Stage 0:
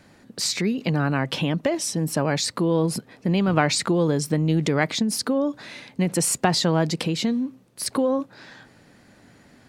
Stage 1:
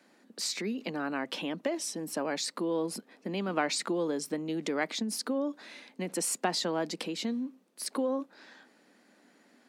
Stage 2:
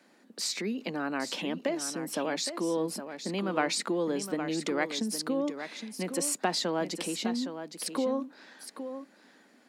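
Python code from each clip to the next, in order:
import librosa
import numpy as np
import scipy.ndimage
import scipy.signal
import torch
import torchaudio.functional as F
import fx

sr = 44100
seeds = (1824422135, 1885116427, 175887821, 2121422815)

y1 = scipy.signal.sosfilt(scipy.signal.butter(6, 210.0, 'highpass', fs=sr, output='sos'), x)
y1 = F.gain(torch.from_numpy(y1), -8.5).numpy()
y2 = y1 + 10.0 ** (-9.5 / 20.0) * np.pad(y1, (int(814 * sr / 1000.0), 0))[:len(y1)]
y2 = F.gain(torch.from_numpy(y2), 1.0).numpy()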